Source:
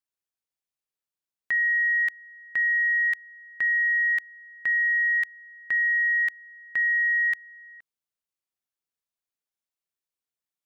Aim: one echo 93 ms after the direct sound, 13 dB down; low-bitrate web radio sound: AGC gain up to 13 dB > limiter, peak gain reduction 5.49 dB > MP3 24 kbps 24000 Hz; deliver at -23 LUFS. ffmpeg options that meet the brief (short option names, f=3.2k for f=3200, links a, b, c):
-af "aecho=1:1:93:0.224,dynaudnorm=m=13dB,alimiter=level_in=1dB:limit=-24dB:level=0:latency=1,volume=-1dB,volume=5.5dB" -ar 24000 -c:a libmp3lame -b:a 24k